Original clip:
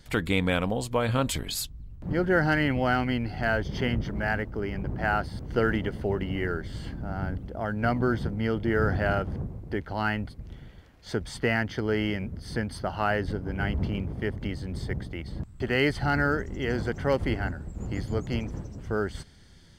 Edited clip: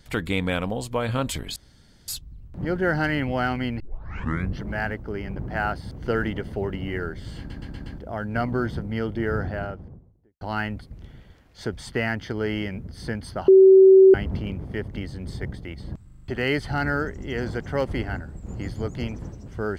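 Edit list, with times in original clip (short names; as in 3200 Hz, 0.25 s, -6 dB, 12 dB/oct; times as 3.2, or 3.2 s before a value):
1.56 insert room tone 0.52 s
3.28 tape start 0.81 s
6.86 stutter in place 0.12 s, 5 plays
8.52–9.89 studio fade out
12.96–13.62 bleep 382 Hz -8 dBFS
15.53 stutter 0.04 s, 5 plays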